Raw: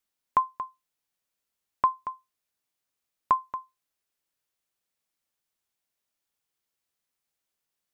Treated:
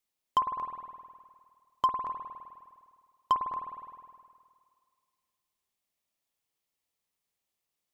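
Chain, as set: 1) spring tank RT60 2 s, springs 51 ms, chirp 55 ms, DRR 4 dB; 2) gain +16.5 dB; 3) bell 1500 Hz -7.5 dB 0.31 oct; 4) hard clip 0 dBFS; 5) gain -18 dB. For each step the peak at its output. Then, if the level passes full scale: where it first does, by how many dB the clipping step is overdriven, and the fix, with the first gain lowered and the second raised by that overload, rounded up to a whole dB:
-11.0, +5.5, +4.5, 0.0, -18.0 dBFS; step 2, 4.5 dB; step 2 +11.5 dB, step 5 -13 dB

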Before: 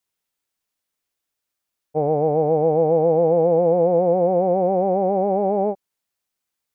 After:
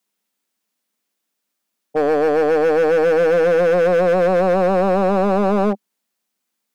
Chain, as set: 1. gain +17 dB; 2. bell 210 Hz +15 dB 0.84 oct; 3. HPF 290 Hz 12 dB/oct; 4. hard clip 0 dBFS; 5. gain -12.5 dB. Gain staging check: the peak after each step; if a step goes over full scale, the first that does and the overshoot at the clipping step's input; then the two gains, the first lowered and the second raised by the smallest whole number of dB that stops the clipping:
+8.5, +12.0, +10.0, 0.0, -12.5 dBFS; step 1, 10.0 dB; step 1 +7 dB, step 5 -2.5 dB

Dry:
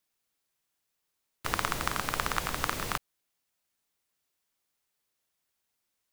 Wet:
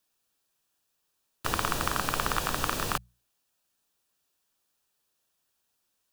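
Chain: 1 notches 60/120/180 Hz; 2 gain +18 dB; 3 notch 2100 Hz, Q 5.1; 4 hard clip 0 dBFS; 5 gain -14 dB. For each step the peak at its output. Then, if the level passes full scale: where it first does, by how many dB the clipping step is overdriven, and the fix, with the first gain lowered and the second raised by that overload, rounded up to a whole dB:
-7.5, +10.5, +10.0, 0.0, -14.0 dBFS; step 2, 10.0 dB; step 2 +8 dB, step 5 -4 dB

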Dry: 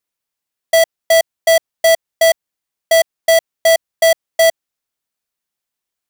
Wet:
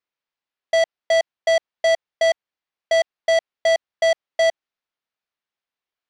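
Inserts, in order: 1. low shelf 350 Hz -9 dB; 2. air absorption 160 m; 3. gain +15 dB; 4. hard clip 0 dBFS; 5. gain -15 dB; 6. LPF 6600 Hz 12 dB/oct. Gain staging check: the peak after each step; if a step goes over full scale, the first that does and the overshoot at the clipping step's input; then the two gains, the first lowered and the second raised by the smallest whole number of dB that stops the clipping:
-5.5, -8.0, +7.0, 0.0, -15.0, -14.5 dBFS; step 3, 7.0 dB; step 3 +8 dB, step 5 -8 dB

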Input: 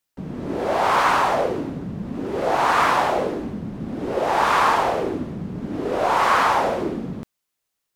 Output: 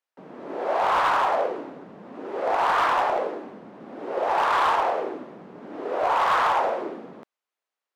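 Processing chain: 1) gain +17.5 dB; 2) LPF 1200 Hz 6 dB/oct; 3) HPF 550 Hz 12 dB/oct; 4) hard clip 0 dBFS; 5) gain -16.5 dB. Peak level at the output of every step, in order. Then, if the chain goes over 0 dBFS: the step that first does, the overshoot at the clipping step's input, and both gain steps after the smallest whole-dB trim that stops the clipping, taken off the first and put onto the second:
+11.5, +9.5, +8.0, 0.0, -16.5 dBFS; step 1, 8.0 dB; step 1 +9.5 dB, step 5 -8.5 dB

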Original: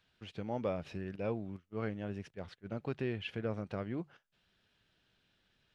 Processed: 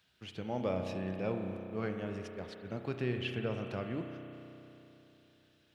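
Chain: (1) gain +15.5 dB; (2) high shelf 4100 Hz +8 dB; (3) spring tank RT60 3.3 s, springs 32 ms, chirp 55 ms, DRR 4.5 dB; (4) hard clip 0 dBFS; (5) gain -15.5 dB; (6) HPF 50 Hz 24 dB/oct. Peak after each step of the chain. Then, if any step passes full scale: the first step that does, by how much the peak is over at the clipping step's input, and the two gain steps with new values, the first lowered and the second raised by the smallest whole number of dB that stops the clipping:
-6.0, -5.5, -5.5, -5.5, -21.0, -20.0 dBFS; no overload

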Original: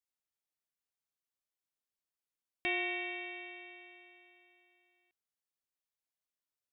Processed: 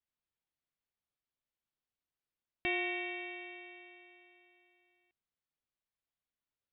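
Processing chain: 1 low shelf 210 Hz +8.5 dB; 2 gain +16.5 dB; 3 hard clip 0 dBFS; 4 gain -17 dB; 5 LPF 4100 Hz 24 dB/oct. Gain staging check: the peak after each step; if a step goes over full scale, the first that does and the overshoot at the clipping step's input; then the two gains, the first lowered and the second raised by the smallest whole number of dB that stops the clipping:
-22.0, -5.5, -5.5, -22.5, -22.5 dBFS; no overload

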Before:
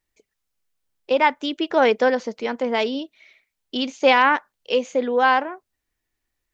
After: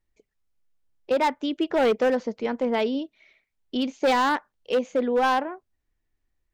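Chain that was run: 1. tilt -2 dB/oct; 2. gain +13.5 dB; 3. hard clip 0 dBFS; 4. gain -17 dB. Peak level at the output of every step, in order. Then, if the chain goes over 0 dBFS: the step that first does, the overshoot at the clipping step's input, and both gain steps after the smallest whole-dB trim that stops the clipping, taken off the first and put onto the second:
-4.0, +9.5, 0.0, -17.0 dBFS; step 2, 9.5 dB; step 2 +3.5 dB, step 4 -7 dB

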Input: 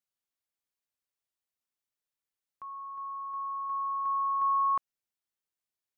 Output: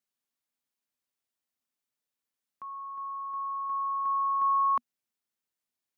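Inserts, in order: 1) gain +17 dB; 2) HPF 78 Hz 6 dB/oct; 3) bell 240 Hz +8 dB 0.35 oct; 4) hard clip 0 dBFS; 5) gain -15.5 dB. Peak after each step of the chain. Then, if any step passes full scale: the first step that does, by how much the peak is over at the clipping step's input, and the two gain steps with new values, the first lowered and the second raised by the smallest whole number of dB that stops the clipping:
-6.0, -6.0, -6.0, -6.0, -21.5 dBFS; no overload

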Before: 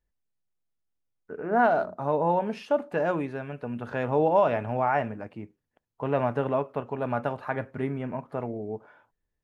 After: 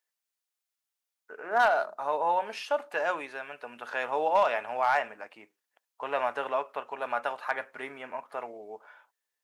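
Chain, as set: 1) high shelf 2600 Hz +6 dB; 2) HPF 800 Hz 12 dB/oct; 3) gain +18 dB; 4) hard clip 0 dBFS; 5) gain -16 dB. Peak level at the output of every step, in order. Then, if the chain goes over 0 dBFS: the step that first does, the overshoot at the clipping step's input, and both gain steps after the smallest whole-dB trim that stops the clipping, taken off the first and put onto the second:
-10.5, -14.0, +4.0, 0.0, -16.0 dBFS; step 3, 4.0 dB; step 3 +14 dB, step 5 -12 dB

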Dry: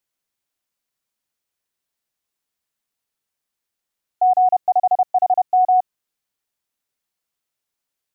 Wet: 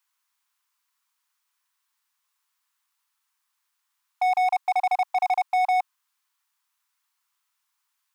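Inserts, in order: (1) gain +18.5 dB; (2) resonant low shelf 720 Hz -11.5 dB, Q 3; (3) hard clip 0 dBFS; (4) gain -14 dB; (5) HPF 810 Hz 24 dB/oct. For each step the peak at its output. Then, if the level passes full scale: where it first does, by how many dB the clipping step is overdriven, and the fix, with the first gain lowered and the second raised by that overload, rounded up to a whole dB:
+8.0, +4.0, 0.0, -14.0, -14.5 dBFS; step 1, 4.0 dB; step 1 +14.5 dB, step 4 -10 dB

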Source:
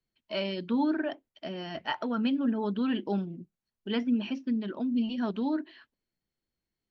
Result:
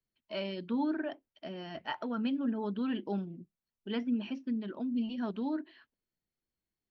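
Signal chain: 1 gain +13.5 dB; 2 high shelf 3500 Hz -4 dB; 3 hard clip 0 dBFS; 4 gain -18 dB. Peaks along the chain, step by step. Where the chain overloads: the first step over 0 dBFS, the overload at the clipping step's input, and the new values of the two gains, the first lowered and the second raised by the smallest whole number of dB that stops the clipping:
-4.0, -4.5, -4.5, -22.5 dBFS; no overload

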